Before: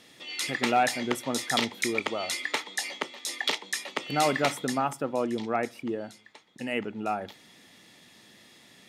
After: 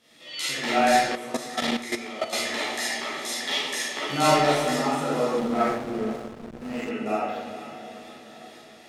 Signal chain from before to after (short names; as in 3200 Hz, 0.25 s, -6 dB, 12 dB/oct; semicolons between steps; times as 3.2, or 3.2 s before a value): tremolo saw up 2.1 Hz, depth 50%; chorus voices 2, 0.6 Hz, delay 13 ms, depth 1.1 ms; diffused feedback echo 0.476 s, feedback 58%, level -12 dB; reverb RT60 1.3 s, pre-delay 4 ms, DRR -8.5 dB; 1.15–2.33 level quantiser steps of 12 dB; 5.39–6.91 backlash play -28.5 dBFS